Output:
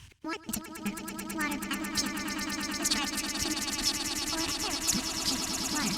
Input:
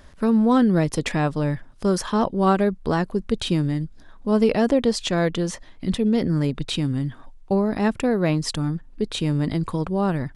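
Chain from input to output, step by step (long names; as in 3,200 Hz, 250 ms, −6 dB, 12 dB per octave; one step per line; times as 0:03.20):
pitch shifter swept by a sawtooth −5.5 semitones, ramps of 574 ms
high-pass filter 41 Hz 12 dB per octave
brickwall limiter −17.5 dBFS, peak gain reduction 10 dB
guitar amp tone stack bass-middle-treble 10-0-10
gate pattern "x.x.x..x...x" 71 BPM −60 dB
high-frequency loss of the air 100 metres
echo that builds up and dies away 189 ms, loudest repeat 8, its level −8 dB
wrong playback speed 45 rpm record played at 78 rpm
level +8 dB
Opus 48 kbit/s 48,000 Hz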